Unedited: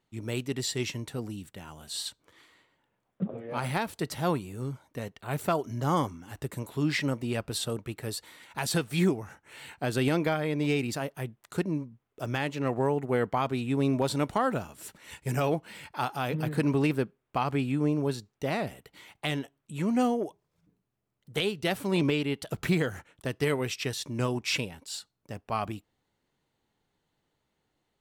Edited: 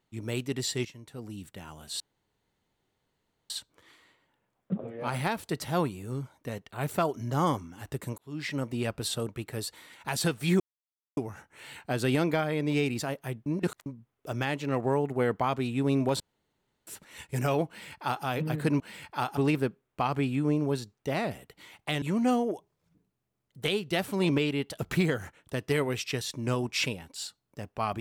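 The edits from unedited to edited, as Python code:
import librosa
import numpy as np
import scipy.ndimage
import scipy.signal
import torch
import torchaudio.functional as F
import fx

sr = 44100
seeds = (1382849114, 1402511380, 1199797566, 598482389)

y = fx.edit(x, sr, fx.fade_in_from(start_s=0.85, length_s=0.59, curve='qua', floor_db=-13.5),
    fx.insert_room_tone(at_s=2.0, length_s=1.5),
    fx.fade_in_span(start_s=6.68, length_s=0.56),
    fx.insert_silence(at_s=9.1, length_s=0.57),
    fx.reverse_span(start_s=11.39, length_s=0.4),
    fx.room_tone_fill(start_s=14.13, length_s=0.67),
    fx.duplicate(start_s=15.61, length_s=0.57, to_s=16.73),
    fx.cut(start_s=19.38, length_s=0.36), tone=tone)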